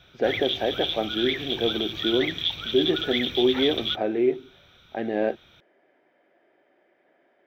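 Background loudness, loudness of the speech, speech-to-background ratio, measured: −27.5 LKFS, −26.5 LKFS, 1.0 dB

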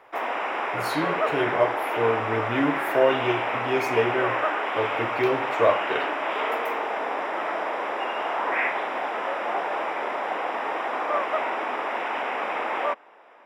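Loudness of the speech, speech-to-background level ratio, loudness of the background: −26.5 LKFS, 0.5 dB, −27.0 LKFS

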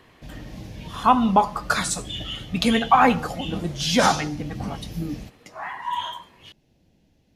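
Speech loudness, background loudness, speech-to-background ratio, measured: −22.5 LKFS, −39.0 LKFS, 16.5 dB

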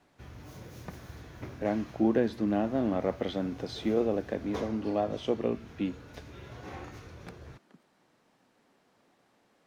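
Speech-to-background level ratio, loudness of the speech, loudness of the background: 16.0 dB, −31.0 LKFS, −47.0 LKFS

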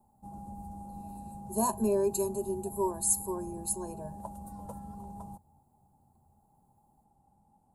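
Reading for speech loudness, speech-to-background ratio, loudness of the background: −31.0 LKFS, 14.0 dB, −45.0 LKFS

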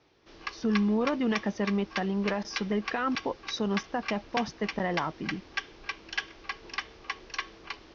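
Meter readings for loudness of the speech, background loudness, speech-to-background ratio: −31.0 LKFS, −38.0 LKFS, 7.0 dB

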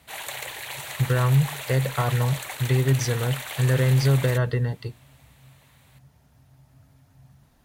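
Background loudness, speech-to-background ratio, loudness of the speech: −34.0 LKFS, 10.5 dB, −23.5 LKFS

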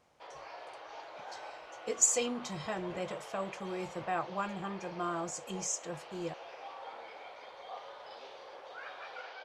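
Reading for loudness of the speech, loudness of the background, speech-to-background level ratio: −35.0 LKFS, −47.5 LKFS, 12.5 dB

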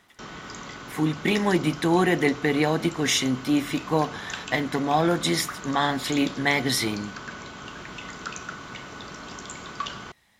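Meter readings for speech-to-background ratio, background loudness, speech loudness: 13.0 dB, −37.5 LKFS, −24.5 LKFS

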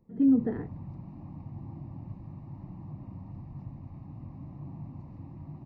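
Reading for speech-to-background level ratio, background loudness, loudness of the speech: 17.5 dB, −44.0 LKFS, −26.5 LKFS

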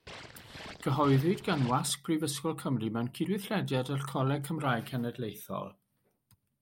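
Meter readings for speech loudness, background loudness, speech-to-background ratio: −32.0 LKFS, −47.0 LKFS, 15.0 dB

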